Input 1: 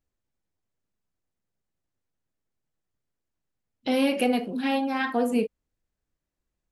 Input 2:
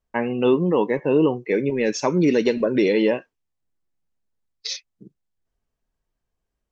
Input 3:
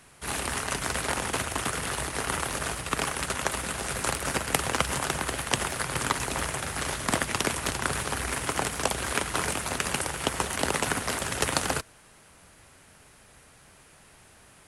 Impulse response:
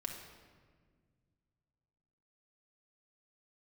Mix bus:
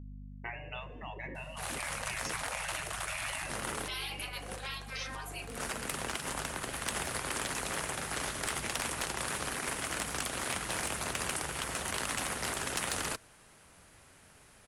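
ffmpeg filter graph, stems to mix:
-filter_complex "[0:a]agate=range=-33dB:threshold=-25dB:ratio=3:detection=peak,aecho=1:1:3.9:0.57,aeval=exprs='val(0)+0.01*(sin(2*PI*50*n/s)+sin(2*PI*2*50*n/s)/2+sin(2*PI*3*50*n/s)/3+sin(2*PI*4*50*n/s)/4+sin(2*PI*5*50*n/s)/5)':c=same,volume=-5.5dB,asplit=3[a][b][c];[b]volume=-9.5dB[d];[1:a]equalizer=f=125:t=o:w=1:g=-10,equalizer=f=250:t=o:w=1:g=11,equalizer=f=500:t=o:w=1:g=7,equalizer=f=1k:t=o:w=1:g=-9,equalizer=f=2k:t=o:w=1:g=11,equalizer=f=4k:t=o:w=1:g=-7,adelay=300,volume=-13.5dB,asplit=2[e][f];[f]volume=-7dB[g];[2:a]asoftclip=type=tanh:threshold=-16dB,adelay=1350,volume=-4dB[h];[c]apad=whole_len=706628[i];[h][i]sidechaincompress=threshold=-47dB:ratio=8:attack=16:release=116[j];[3:a]atrim=start_sample=2205[k];[d][g]amix=inputs=2:normalize=0[l];[l][k]afir=irnorm=-1:irlink=0[m];[a][e][j][m]amix=inputs=4:normalize=0,afftfilt=real='re*lt(hypot(re,im),0.0708)':imag='im*lt(hypot(re,im),0.0708)':win_size=1024:overlap=0.75"

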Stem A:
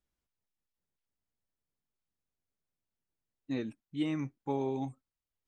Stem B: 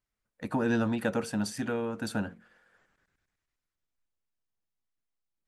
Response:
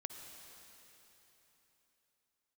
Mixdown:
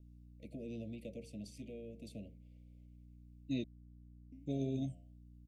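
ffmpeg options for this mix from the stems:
-filter_complex "[0:a]aecho=1:1:1.1:0.65,flanger=delay=7.1:depth=4.4:regen=89:speed=1.5:shape=sinusoidal,volume=2.5dB,asplit=3[a][b][c];[a]atrim=end=3.64,asetpts=PTS-STARTPTS,afade=t=out:st=3.636:d=0.004:c=hsin[d];[b]atrim=start=3.64:end=4.32,asetpts=PTS-STARTPTS,volume=0[e];[c]atrim=start=4.32,asetpts=PTS-STARTPTS,afade=t=in:d=0.004:c=hsin[f];[d][e][f]concat=n=3:v=0:a=1[g];[1:a]bass=f=250:g=-4,treble=f=4k:g=-5,acrossover=split=150[h][i];[i]acompressor=threshold=-47dB:ratio=1.5[j];[h][j]amix=inputs=2:normalize=0,volume=-9.5dB[k];[g][k]amix=inputs=2:normalize=0,aeval=exprs='val(0)+0.00158*(sin(2*PI*60*n/s)+sin(2*PI*2*60*n/s)/2+sin(2*PI*3*60*n/s)/3+sin(2*PI*4*60*n/s)/4+sin(2*PI*5*60*n/s)/5)':c=same,asuperstop=centerf=1200:order=20:qfactor=0.82"

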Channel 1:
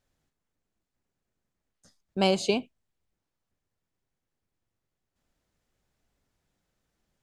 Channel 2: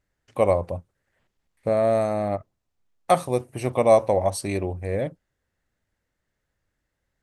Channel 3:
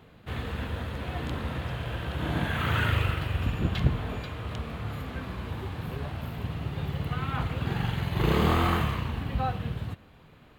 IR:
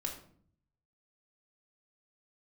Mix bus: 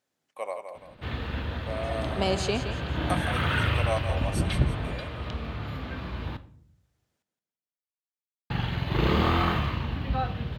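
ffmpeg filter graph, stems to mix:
-filter_complex "[0:a]highpass=200,alimiter=limit=-14.5dB:level=0:latency=1,volume=-0.5dB,asplit=2[a][b];[b]volume=-10dB[c];[1:a]highpass=800,agate=range=-33dB:threshold=-53dB:ratio=3:detection=peak,volume=-8dB,asplit=2[d][e];[e]volume=-8dB[f];[2:a]highshelf=f=6.4k:t=q:w=1.5:g=-9,adelay=750,volume=-2.5dB,asplit=3[g][h][i];[g]atrim=end=6.37,asetpts=PTS-STARTPTS,afade=t=out:st=6.366:d=0.004:c=hsin[j];[h]atrim=start=6.37:end=8.5,asetpts=PTS-STARTPTS,volume=0[k];[i]atrim=start=8.5,asetpts=PTS-STARTPTS,afade=t=in:d=0.004:c=hsin[l];[j][k][l]concat=n=3:v=0:a=1,asplit=2[m][n];[n]volume=-6.5dB[o];[3:a]atrim=start_sample=2205[p];[o][p]afir=irnorm=-1:irlink=0[q];[c][f]amix=inputs=2:normalize=0,aecho=0:1:168|336|504|672|840|1008:1|0.4|0.16|0.064|0.0256|0.0102[r];[a][d][m][q][r]amix=inputs=5:normalize=0"

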